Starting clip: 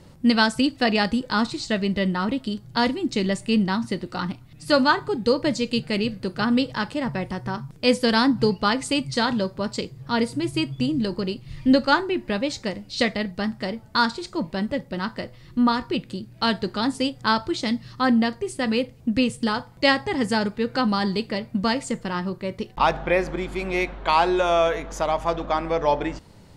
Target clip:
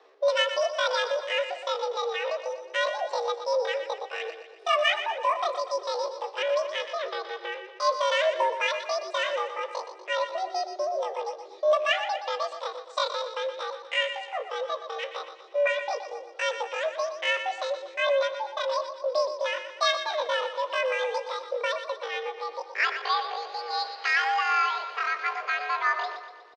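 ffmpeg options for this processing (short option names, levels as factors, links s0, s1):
-af "highpass=f=170:t=q:w=0.5412,highpass=f=170:t=q:w=1.307,lowpass=f=2700:t=q:w=0.5176,lowpass=f=2700:t=q:w=0.7071,lowpass=f=2700:t=q:w=1.932,afreqshift=62,asetrate=83250,aresample=44100,atempo=0.529732,aecho=1:1:121|242|363|484|605|726:0.316|0.161|0.0823|0.0419|0.0214|0.0109,volume=0.562"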